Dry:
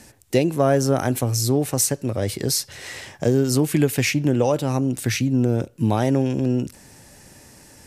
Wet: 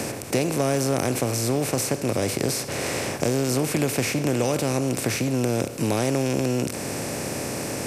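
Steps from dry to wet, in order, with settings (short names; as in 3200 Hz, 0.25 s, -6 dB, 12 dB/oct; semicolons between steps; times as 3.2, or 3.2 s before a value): per-bin compression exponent 0.4; three-band squash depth 40%; gain -8.5 dB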